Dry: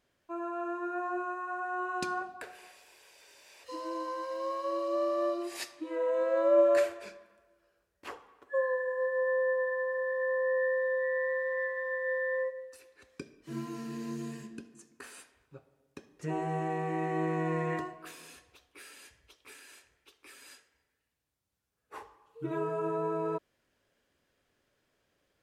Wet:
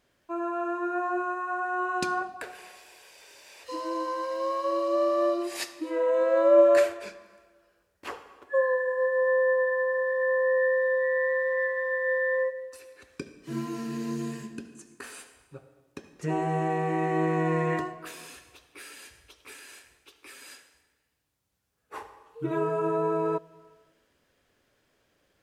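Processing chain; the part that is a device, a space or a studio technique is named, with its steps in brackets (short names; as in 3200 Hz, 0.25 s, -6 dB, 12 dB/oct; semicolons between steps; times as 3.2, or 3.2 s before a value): compressed reverb return (on a send at -11 dB: reverb RT60 0.95 s, pre-delay 66 ms + compressor, threshold -43 dBFS, peak gain reduction 21 dB); on the sum: gain +5.5 dB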